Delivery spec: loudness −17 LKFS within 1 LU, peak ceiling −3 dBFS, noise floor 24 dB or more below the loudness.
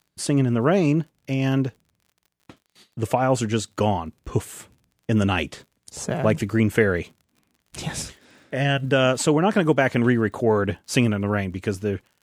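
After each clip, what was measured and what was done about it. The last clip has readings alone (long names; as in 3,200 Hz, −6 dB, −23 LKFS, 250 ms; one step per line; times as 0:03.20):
crackle rate 49 per second; integrated loudness −22.5 LKFS; sample peak −3.5 dBFS; target loudness −17.0 LKFS
→ click removal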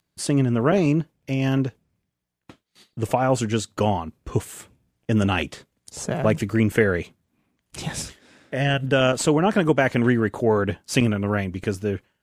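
crackle rate 0.16 per second; integrated loudness −22.5 LKFS; sample peak −3.5 dBFS; target loudness −17.0 LKFS
→ level +5.5 dB
brickwall limiter −3 dBFS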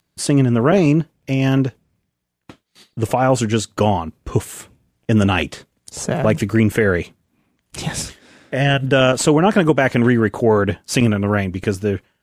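integrated loudness −17.5 LKFS; sample peak −3.0 dBFS; background noise floor −72 dBFS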